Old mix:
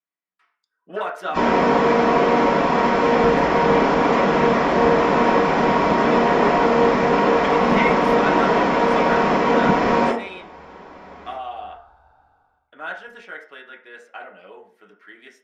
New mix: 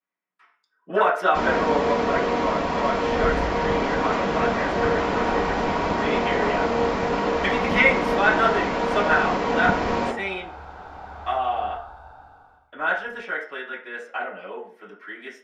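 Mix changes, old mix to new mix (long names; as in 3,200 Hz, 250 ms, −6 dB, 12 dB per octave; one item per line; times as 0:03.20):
speech: send +9.0 dB
first sound: send −8.0 dB
second sound +10.5 dB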